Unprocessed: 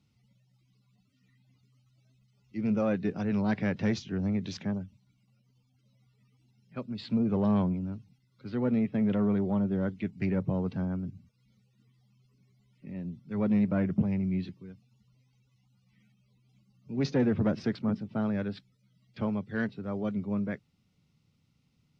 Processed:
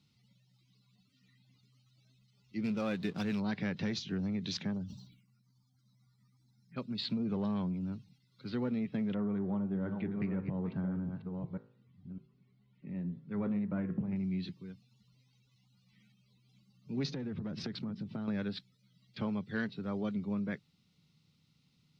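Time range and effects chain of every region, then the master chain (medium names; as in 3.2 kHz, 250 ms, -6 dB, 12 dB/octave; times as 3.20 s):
2.64–3.40 s: peaking EQ 3.9 kHz +8 dB 2 oct + hysteresis with a dead band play -44 dBFS
4.77–6.78 s: touch-sensitive phaser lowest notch 400 Hz, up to 2.2 kHz, full sweep at -45 dBFS + decay stretcher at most 76 dB/s
9.14–14.16 s: chunks repeated in reverse 609 ms, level -9 dB + low-pass 1.9 kHz + de-hum 53.95 Hz, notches 36
17.08–18.28 s: bass shelf 210 Hz +7.5 dB + compression 16:1, threshold -33 dBFS
whole clip: fifteen-band graphic EQ 160 Hz +6 dB, 630 Hz -4 dB, 4 kHz +8 dB; compression, threshold -28 dBFS; bass shelf 210 Hz -7 dB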